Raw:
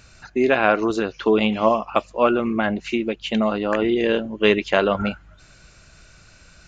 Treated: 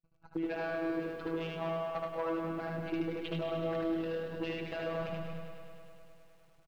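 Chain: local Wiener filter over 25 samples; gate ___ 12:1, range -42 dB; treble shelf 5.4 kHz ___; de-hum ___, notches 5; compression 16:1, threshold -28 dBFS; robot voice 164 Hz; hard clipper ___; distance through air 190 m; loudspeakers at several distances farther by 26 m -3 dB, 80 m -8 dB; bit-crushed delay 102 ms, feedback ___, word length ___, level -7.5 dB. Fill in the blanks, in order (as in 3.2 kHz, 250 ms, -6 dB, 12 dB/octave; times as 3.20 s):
-46 dBFS, +7 dB, 102.5 Hz, -27 dBFS, 80%, 11-bit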